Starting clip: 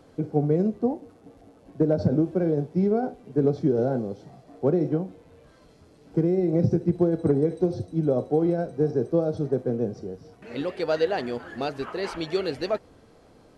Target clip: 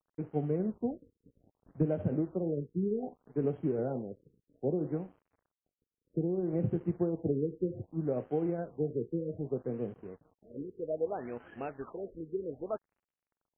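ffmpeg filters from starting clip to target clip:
-filter_complex "[0:a]asplit=3[a][b][c];[a]afade=t=out:st=0.67:d=0.02[d];[b]asubboost=boost=5:cutoff=230,afade=t=in:st=0.67:d=0.02,afade=t=out:st=1.85:d=0.02[e];[c]afade=t=in:st=1.85:d=0.02[f];[d][e][f]amix=inputs=3:normalize=0,aeval=exprs='sgn(val(0))*max(abs(val(0))-0.00473,0)':c=same,afftfilt=real='re*lt(b*sr/1024,490*pow(3300/490,0.5+0.5*sin(2*PI*0.63*pts/sr)))':imag='im*lt(b*sr/1024,490*pow(3300/490,0.5+0.5*sin(2*PI*0.63*pts/sr)))':win_size=1024:overlap=0.75,volume=-9dB"

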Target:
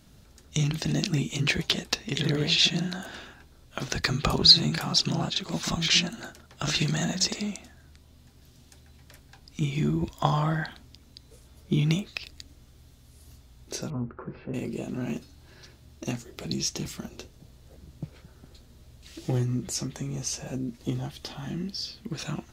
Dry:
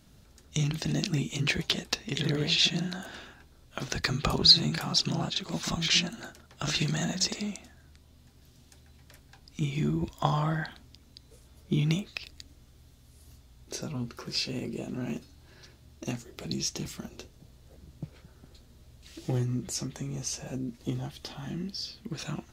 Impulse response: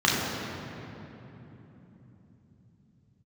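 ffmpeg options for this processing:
-filter_complex "[0:a]asettb=1/sr,asplit=3[a][b][c];[a]atrim=end=13.904[d];[b]atrim=start=13.9:end=14.54,asetpts=PTS-STARTPTS,afade=t=in:d=0.004:c=qsin,afade=t=out:st=0.636:d=0.004:c=qsin,lowpass=f=1.5k:w=0.5412,lowpass=f=1.5k:w=1.3066[e];[c]atrim=start=14.536[f];[d][e]acrossfade=d=0.004:c1=hsin:c2=qsin[g];[g][f]acrossfade=d=0.004:c1=qsin:c2=hsin,volume=2.5dB"

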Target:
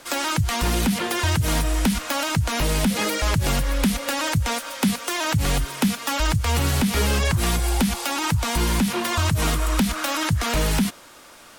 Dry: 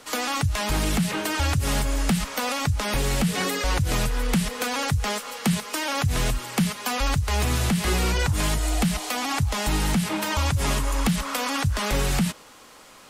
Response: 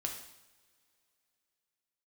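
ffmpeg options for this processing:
-af "asetrate=49833,aresample=44100,volume=2dB"

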